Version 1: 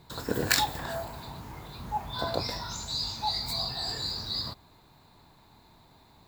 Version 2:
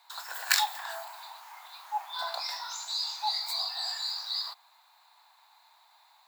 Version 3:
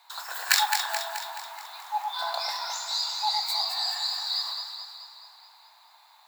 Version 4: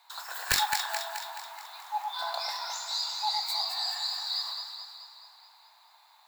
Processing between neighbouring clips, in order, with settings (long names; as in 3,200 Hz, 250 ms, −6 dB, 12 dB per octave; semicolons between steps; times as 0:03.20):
Butterworth high-pass 740 Hz 48 dB per octave
delay that swaps between a low-pass and a high-pass 107 ms, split 1,300 Hz, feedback 75%, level −3.5 dB; level +3 dB
wavefolder on the positive side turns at −14 dBFS; level −3 dB